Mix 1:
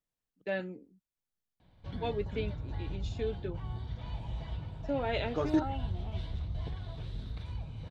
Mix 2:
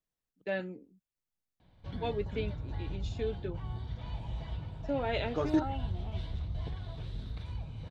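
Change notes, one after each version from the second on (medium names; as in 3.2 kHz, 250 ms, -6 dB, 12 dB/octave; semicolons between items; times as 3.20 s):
no change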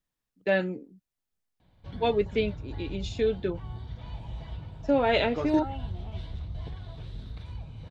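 first voice +9.5 dB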